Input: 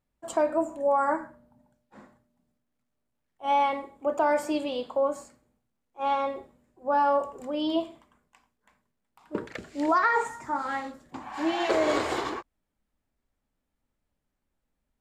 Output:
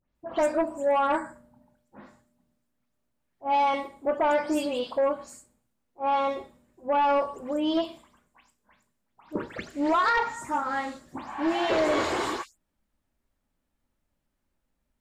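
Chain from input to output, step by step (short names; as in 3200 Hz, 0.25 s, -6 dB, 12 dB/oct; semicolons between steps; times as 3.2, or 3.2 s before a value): spectral delay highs late, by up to 0.152 s; in parallel at -4 dB: sine folder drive 7 dB, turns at -12 dBFS; on the sum: gain -7.5 dB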